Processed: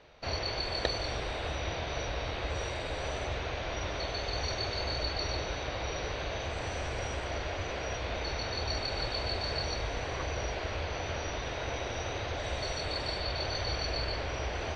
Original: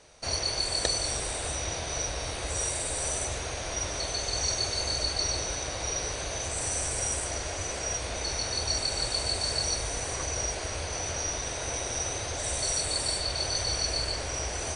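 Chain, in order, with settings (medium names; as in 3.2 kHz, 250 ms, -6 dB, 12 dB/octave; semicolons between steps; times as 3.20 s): low-pass 3.8 kHz 24 dB/octave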